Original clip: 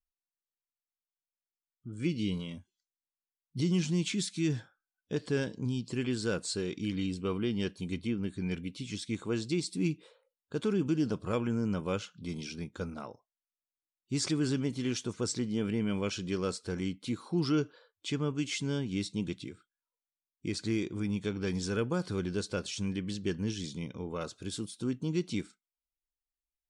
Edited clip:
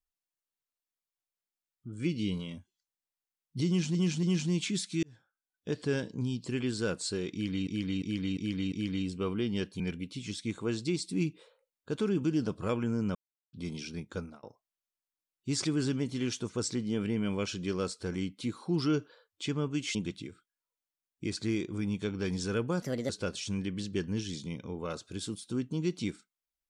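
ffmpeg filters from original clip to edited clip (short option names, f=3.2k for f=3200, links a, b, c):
-filter_complex "[0:a]asplit=15[a][b][c][d][e][f][g][h][i][j][k][l][m][n][o];[a]atrim=end=3.952[p];[b]atrim=start=3.668:end=3.952[q];[c]atrim=start=3.668:end=4.47,asetpts=PTS-STARTPTS,afade=t=out:st=0.798:d=0.004:c=hsin[r];[d]atrim=start=4.47:end=7.112,asetpts=PTS-STARTPTS,afade=t=in:d=0.72[s];[e]atrim=start=6.758:end=7.112[t];[f]atrim=start=6.758:end=7.112[u];[g]atrim=start=6.758:end=7.112[v];[h]atrim=start=6.758:end=7.842[w];[i]atrim=start=8.438:end=11.79,asetpts=PTS-STARTPTS,afade=t=out:st=3.348:d=0.004:c=hsin[x];[j]atrim=start=11.79:end=12.17,asetpts=PTS-STARTPTS,volume=0[y];[k]atrim=start=12.17:end=13.07,asetpts=PTS-STARTPTS,afade=t=in:d=0.004:c=hsin,afade=t=out:st=0.65:d=0.25[z];[l]atrim=start=13.07:end=18.592,asetpts=PTS-STARTPTS,afade=t=in:d=0.004:c=hsin[aa];[m]atrim=start=19.168:end=22.044[ab];[n]atrim=start=22.04:end=22.4,asetpts=PTS-STARTPTS,asetrate=58212,aresample=44100,atrim=end_sample=12027,asetpts=PTS-STARTPTS[ac];[o]atrim=start=22.396[ad];[p][q]acrossfade=d=0.004:c1=hsin:c2=hsin[ae];[r][s]concat=n=2:v=0:a=1[af];[ae][af]acrossfade=d=0.004:c1=hsin:c2=hsin[ag];[ag][t]acrossfade=d=0.004:c1=hsin:c2=hsin[ah];[ah][u]acrossfade=d=0.004:c1=hsin:c2=hsin[ai];[ai][v]acrossfade=d=0.004:c1=hsin:c2=hsin[aj];[aj][w]acrossfade=d=0.004:c1=hsin:c2=hsin[ak];[x][y][z][aa]concat=n=4:v=0:a=1[al];[ak][al]acrossfade=d=0.004:c1=hsin:c2=hsin[am];[am][ab]acrossfade=d=0.004:c1=hsin:c2=hsin[an];[an][ac]acrossfade=d=0.004:c1=hsin:c2=hsin[ao];[ao][ad]acrossfade=d=0.004:c1=hsin:c2=hsin"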